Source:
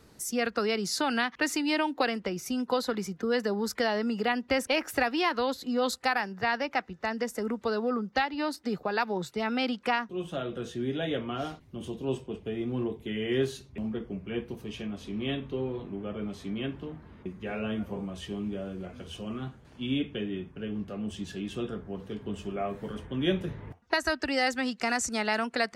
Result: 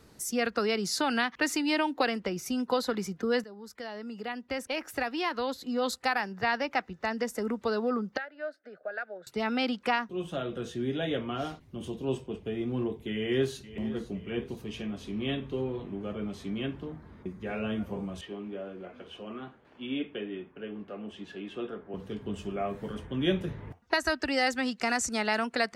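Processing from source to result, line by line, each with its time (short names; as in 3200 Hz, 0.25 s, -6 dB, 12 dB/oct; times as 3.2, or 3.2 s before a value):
3.44–6.48 fade in, from -18.5 dB
8.17–9.27 double band-pass 970 Hz, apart 1.3 oct
13.12–13.93 echo throw 0.51 s, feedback 60%, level -15.5 dB
16.81–17.5 bell 2800 Hz -6.5 dB 0.4 oct
18.21–21.94 three-band isolator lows -17 dB, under 250 Hz, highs -17 dB, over 3400 Hz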